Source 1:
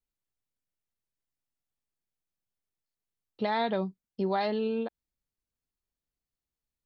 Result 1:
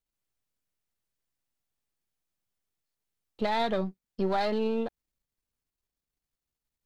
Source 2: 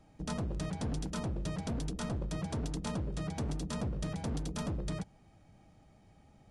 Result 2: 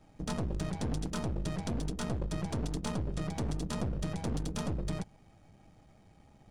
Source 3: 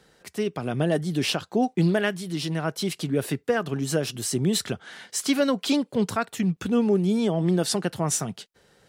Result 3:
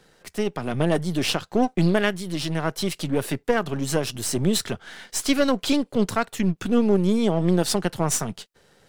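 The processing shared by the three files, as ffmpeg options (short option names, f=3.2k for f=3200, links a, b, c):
-af "aeval=exprs='if(lt(val(0),0),0.447*val(0),val(0))':c=same,volume=4dB"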